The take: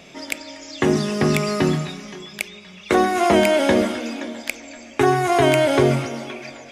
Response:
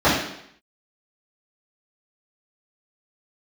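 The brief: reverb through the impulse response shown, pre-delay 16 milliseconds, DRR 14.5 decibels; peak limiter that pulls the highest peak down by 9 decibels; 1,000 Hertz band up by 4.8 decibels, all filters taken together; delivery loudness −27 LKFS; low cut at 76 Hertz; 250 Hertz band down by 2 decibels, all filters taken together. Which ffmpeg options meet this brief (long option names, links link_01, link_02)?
-filter_complex "[0:a]highpass=76,equalizer=frequency=250:width_type=o:gain=-3.5,equalizer=frequency=1000:width_type=o:gain=7.5,alimiter=limit=-9.5dB:level=0:latency=1,asplit=2[link_01][link_02];[1:a]atrim=start_sample=2205,adelay=16[link_03];[link_02][link_03]afir=irnorm=-1:irlink=0,volume=-38dB[link_04];[link_01][link_04]amix=inputs=2:normalize=0,volume=-6.5dB"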